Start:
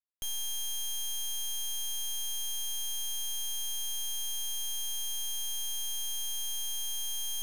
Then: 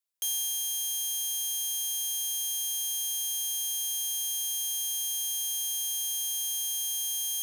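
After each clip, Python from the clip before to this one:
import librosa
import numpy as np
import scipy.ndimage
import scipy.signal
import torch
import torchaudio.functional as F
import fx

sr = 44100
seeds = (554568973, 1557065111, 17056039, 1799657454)

y = scipy.signal.sosfilt(scipy.signal.ellip(4, 1.0, 60, 360.0, 'highpass', fs=sr, output='sos'), x)
y = fx.high_shelf(y, sr, hz=3100.0, db=11.0)
y = fx.rider(y, sr, range_db=10, speed_s=0.5)
y = y * 10.0 ** (-3.0 / 20.0)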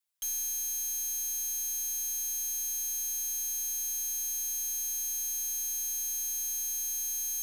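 y = fx.peak_eq(x, sr, hz=340.0, db=-12.0, octaves=0.87)
y = y + 0.87 * np.pad(y, (int(6.7 * sr / 1000.0), 0))[:len(y)]
y = 10.0 ** (-29.5 / 20.0) * np.tanh(y / 10.0 ** (-29.5 / 20.0))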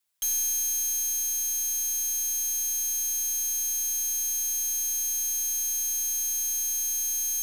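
y = fx.rider(x, sr, range_db=10, speed_s=2.0)
y = y + 10.0 ** (-13.0 / 20.0) * np.pad(y, (int(90 * sr / 1000.0), 0))[:len(y)]
y = y * 10.0 ** (5.0 / 20.0)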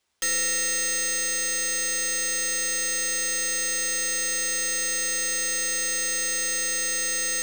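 y = np.repeat(x[::3], 3)[:len(x)]
y = y * 10.0 ** (2.0 / 20.0)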